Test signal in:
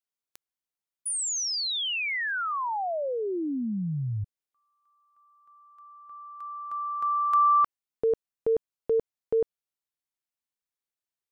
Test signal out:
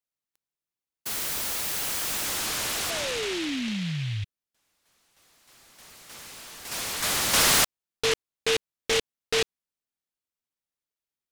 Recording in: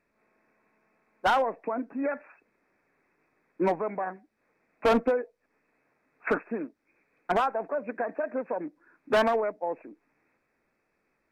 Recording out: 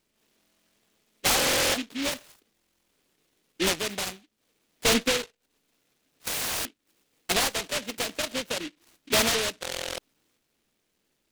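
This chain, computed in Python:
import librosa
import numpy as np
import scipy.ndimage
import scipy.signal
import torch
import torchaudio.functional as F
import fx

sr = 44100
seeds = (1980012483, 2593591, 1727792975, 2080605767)

y = fx.buffer_glitch(x, sr, at_s=(0.39, 1.37, 2.53, 6.28, 9.61), block=1024, repeats=15)
y = fx.noise_mod_delay(y, sr, seeds[0], noise_hz=2700.0, depth_ms=0.31)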